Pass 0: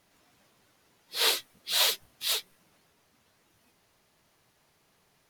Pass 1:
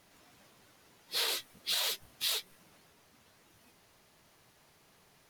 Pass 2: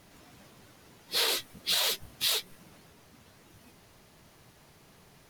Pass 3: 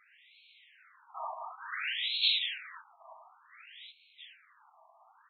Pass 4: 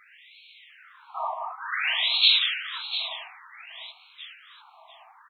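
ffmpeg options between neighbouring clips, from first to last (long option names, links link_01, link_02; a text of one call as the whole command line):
ffmpeg -i in.wav -af "alimiter=limit=-19dB:level=0:latency=1:release=19,acompressor=threshold=-33dB:ratio=6,volume=3.5dB" out.wav
ffmpeg -i in.wav -af "lowshelf=frequency=350:gain=7.5,volume=4.5dB" out.wav
ffmpeg -i in.wav -af "aecho=1:1:180|432|784.8|1279|1970:0.631|0.398|0.251|0.158|0.1,afftfilt=real='re*between(b*sr/1024,850*pow(3100/850,0.5+0.5*sin(2*PI*0.56*pts/sr))/1.41,850*pow(3100/850,0.5+0.5*sin(2*PI*0.56*pts/sr))*1.41)':imag='im*between(b*sr/1024,850*pow(3100/850,0.5+0.5*sin(2*PI*0.56*pts/sr))/1.41,850*pow(3100/850,0.5+0.5*sin(2*PI*0.56*pts/sr))*1.41)':win_size=1024:overlap=0.75,volume=2.5dB" out.wav
ffmpeg -i in.wav -af "aecho=1:1:697:0.266,volume=9dB" out.wav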